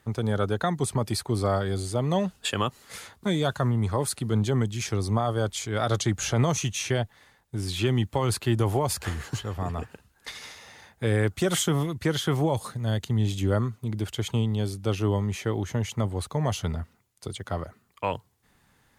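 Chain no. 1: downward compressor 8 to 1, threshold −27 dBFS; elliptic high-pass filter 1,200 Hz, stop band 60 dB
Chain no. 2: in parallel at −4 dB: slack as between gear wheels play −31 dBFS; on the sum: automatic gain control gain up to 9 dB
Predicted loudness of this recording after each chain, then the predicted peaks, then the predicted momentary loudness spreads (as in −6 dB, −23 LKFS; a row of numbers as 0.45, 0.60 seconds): −39.5, −17.0 LKFS; −18.0, −1.5 dBFS; 12, 10 LU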